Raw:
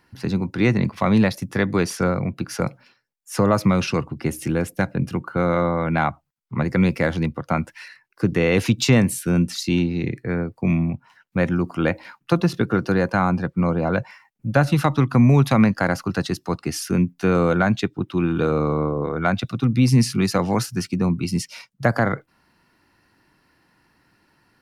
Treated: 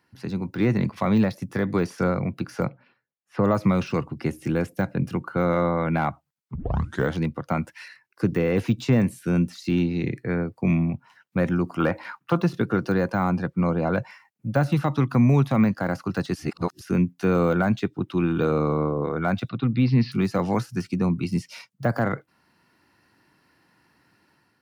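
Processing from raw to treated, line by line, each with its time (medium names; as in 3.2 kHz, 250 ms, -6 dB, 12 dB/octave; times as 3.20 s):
2.66–3.44 s: distance through air 400 m
6.55 s: tape start 0.57 s
11.80–12.42 s: peaking EQ 1.2 kHz +10 dB 1.4 oct
16.35–16.81 s: reverse
19.49–20.12 s: elliptic low-pass 4.3 kHz, stop band 50 dB
whole clip: de-esser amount 95%; high-pass 81 Hz; level rider gain up to 6 dB; trim -7 dB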